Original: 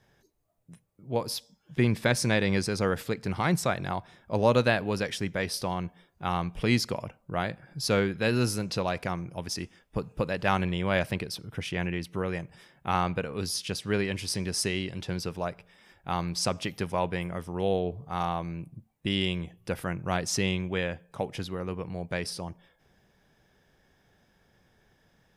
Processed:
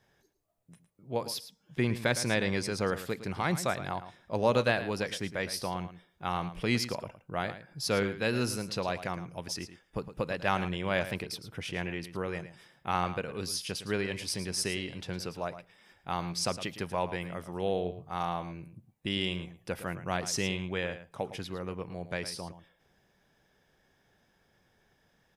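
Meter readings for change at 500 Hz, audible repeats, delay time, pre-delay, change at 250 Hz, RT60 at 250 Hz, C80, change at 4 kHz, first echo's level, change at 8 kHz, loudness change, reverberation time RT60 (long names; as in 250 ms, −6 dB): −3.0 dB, 1, 110 ms, no reverb audible, −4.5 dB, no reverb audible, no reverb audible, −2.5 dB, −12.5 dB, −2.5 dB, −3.5 dB, no reverb audible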